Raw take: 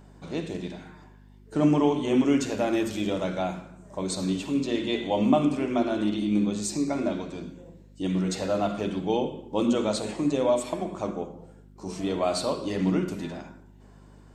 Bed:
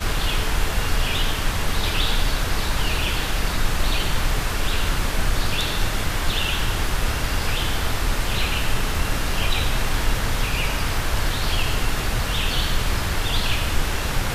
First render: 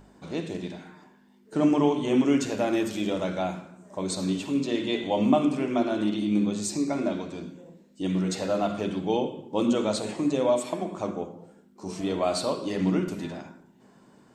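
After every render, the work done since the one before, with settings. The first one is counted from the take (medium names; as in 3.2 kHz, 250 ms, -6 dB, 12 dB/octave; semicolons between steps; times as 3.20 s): de-hum 50 Hz, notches 3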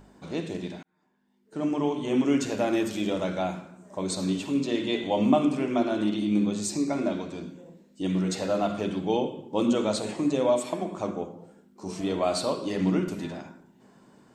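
0.83–2.53 s: fade in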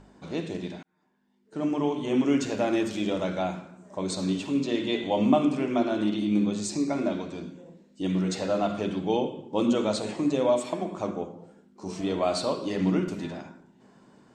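low-pass 8 kHz 12 dB/octave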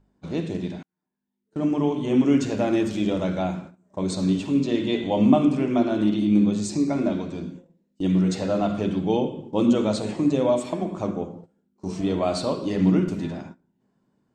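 gate -44 dBFS, range -18 dB; bass shelf 260 Hz +10 dB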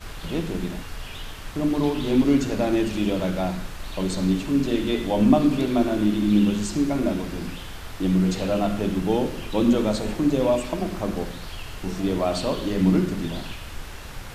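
add bed -14 dB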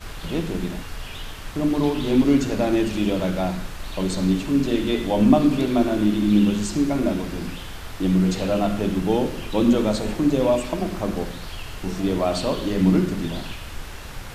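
trim +1.5 dB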